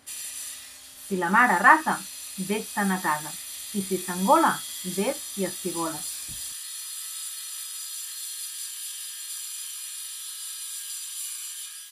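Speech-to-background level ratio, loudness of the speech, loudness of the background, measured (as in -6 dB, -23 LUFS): 9.0 dB, -24.5 LUFS, -33.5 LUFS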